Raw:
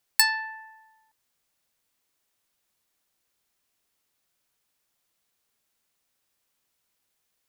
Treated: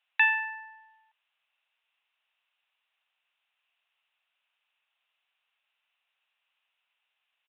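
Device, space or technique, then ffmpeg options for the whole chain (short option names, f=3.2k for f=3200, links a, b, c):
musical greeting card: -af "aresample=8000,aresample=44100,highpass=f=710:w=0.5412,highpass=f=710:w=1.3066,equalizer=f=2.7k:t=o:w=0.37:g=10"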